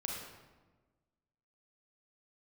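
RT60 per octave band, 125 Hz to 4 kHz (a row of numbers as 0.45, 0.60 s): 1.6, 1.6, 1.4, 1.2, 1.0, 0.80 s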